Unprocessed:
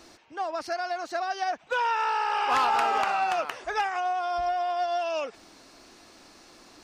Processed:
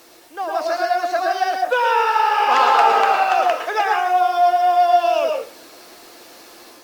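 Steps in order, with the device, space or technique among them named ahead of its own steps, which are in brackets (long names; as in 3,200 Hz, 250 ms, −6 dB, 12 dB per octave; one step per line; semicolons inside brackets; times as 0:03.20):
filmed off a television (band-pass filter 290–7,000 Hz; parametric band 490 Hz +5 dB 0.31 octaves; convolution reverb RT60 0.35 s, pre-delay 105 ms, DRR 1.5 dB; white noise bed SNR 30 dB; automatic gain control gain up to 4 dB; level +3 dB; AAC 96 kbit/s 44,100 Hz)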